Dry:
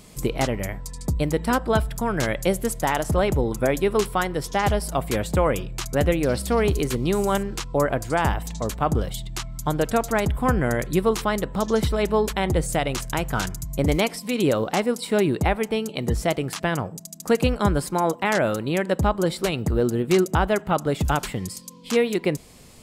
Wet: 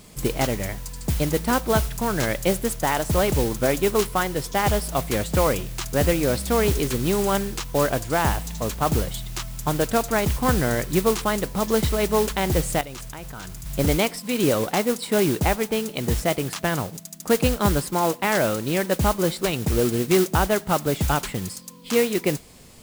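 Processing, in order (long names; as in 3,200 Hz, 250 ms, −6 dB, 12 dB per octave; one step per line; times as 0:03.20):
noise that follows the level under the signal 12 dB
0:12.81–0:13.66: output level in coarse steps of 18 dB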